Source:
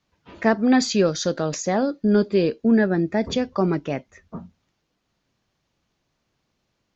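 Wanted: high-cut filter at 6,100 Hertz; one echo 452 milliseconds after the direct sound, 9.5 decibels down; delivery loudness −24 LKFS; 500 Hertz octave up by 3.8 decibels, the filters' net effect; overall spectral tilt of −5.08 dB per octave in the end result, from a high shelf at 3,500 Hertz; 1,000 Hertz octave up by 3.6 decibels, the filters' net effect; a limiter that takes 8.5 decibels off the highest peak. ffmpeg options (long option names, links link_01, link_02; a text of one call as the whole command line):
ffmpeg -i in.wav -af "lowpass=6100,equalizer=frequency=500:width_type=o:gain=4,equalizer=frequency=1000:width_type=o:gain=3,highshelf=frequency=3500:gain=3.5,alimiter=limit=-10.5dB:level=0:latency=1,aecho=1:1:452:0.335,volume=-3dB" out.wav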